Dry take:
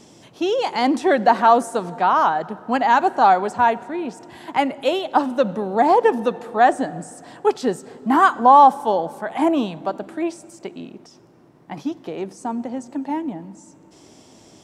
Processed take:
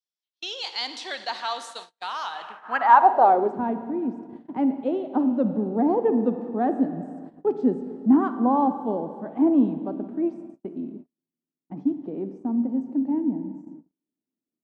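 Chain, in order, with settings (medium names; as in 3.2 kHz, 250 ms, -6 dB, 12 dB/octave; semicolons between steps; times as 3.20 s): Schroeder reverb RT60 2.2 s, DRR 9.5 dB; band-pass sweep 4.1 kHz -> 250 Hz, 2.29–3.62 s; gate -43 dBFS, range -42 dB; trim +4 dB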